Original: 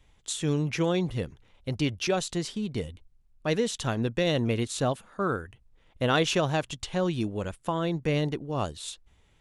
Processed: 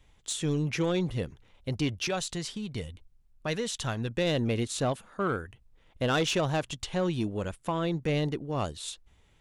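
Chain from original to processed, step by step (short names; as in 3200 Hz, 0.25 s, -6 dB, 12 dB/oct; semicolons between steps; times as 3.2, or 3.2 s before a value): 1.99–4.11 dynamic EQ 330 Hz, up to -7 dB, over -39 dBFS, Q 0.71; soft clip -19.5 dBFS, distortion -17 dB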